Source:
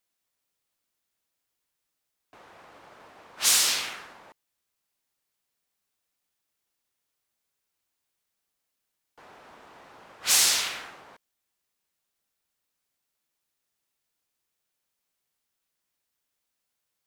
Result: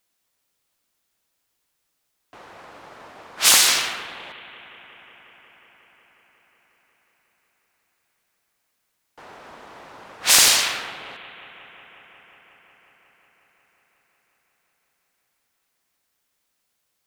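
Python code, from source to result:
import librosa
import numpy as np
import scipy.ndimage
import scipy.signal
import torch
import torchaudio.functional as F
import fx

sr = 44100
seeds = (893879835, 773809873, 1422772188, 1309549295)

y = fx.echo_bbd(x, sr, ms=181, stages=4096, feedback_pct=83, wet_db=-16.5)
y = fx.doppler_dist(y, sr, depth_ms=0.69)
y = y * 10.0 ** (7.5 / 20.0)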